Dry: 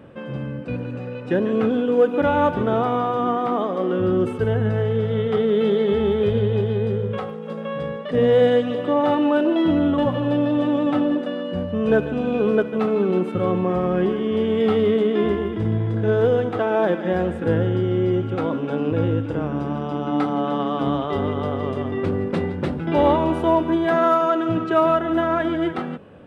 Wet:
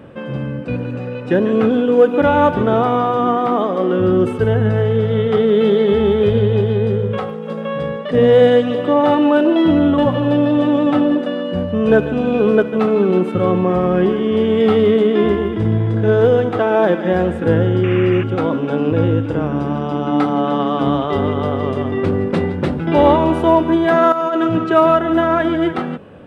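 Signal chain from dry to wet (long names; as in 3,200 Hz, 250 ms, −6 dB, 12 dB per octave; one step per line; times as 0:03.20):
0:17.83–0:18.24: sound drawn into the spectrogram noise 1,000–2,900 Hz −36 dBFS
0:24.12–0:24.56: compressor whose output falls as the input rises −23 dBFS, ratio −1
level +5.5 dB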